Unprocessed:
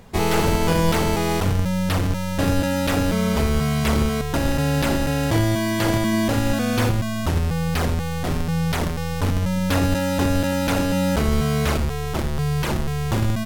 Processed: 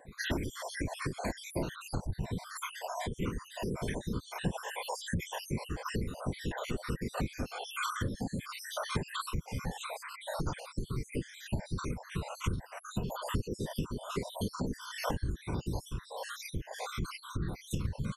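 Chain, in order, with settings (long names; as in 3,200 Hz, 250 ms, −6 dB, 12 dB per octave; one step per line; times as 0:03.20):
time-frequency cells dropped at random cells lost 72%
downward compressor 6 to 1, threshold −31 dBFS, peak gain reduction 14 dB
reverb reduction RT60 1 s
random phases in short frames
wrong playback speed 45 rpm record played at 33 rpm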